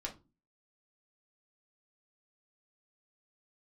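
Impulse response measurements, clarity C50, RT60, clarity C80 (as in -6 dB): 13.5 dB, 0.30 s, 21.5 dB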